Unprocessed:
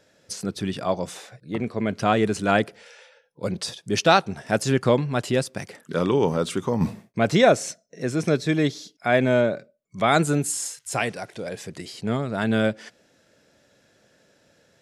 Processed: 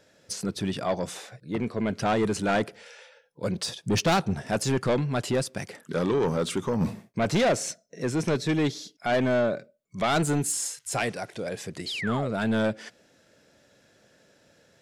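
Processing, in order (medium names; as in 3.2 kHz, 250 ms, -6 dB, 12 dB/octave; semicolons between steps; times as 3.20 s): 3.84–4.49 s: bass shelf 280 Hz +9.5 dB; 11.86–12.31 s: painted sound fall 430–4600 Hz -33 dBFS; saturation -18.5 dBFS, distortion -8 dB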